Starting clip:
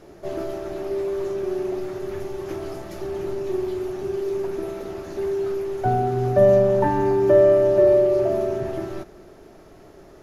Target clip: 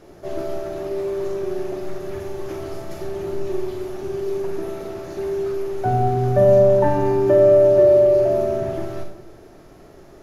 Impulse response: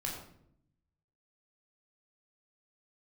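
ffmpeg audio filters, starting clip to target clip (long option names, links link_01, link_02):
-filter_complex "[0:a]asplit=2[link_01][link_02];[1:a]atrim=start_sample=2205,highshelf=frequency=5400:gain=8,adelay=42[link_03];[link_02][link_03]afir=irnorm=-1:irlink=0,volume=-8dB[link_04];[link_01][link_04]amix=inputs=2:normalize=0"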